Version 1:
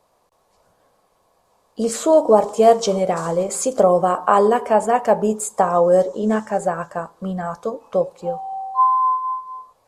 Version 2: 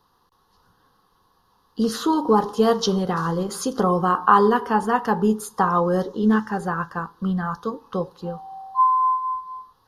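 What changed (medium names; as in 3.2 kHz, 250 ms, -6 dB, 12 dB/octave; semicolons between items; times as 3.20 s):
speech +4.0 dB; master: add static phaser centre 2.3 kHz, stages 6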